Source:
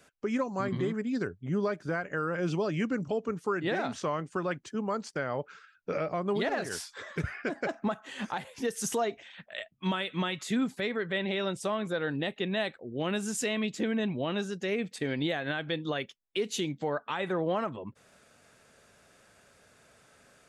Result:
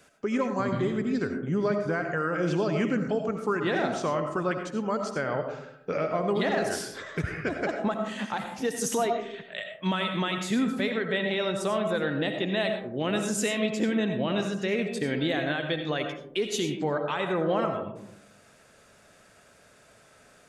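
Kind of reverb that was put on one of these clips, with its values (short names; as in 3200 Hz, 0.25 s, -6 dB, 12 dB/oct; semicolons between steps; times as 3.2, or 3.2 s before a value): digital reverb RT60 0.76 s, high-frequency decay 0.3×, pre-delay 45 ms, DRR 5 dB; gain +2.5 dB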